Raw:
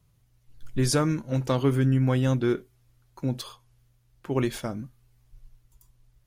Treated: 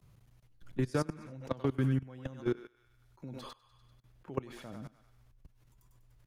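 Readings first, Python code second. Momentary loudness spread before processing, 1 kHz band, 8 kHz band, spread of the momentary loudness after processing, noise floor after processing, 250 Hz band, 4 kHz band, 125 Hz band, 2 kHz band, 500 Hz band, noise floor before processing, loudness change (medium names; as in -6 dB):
14 LU, -10.0 dB, -19.5 dB, 19 LU, -68 dBFS, -10.0 dB, -15.5 dB, -11.0 dB, -10.0 dB, -9.5 dB, -65 dBFS, -10.5 dB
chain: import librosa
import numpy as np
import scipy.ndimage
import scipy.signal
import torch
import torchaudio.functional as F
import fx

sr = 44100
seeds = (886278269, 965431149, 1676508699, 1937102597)

y = fx.echo_thinned(x, sr, ms=98, feedback_pct=43, hz=760.0, wet_db=-4)
y = fx.level_steps(y, sr, step_db=22)
y = fx.high_shelf(y, sr, hz=3900.0, db=-7.5)
y = fx.band_squash(y, sr, depth_pct=40)
y = y * 10.0 ** (-4.5 / 20.0)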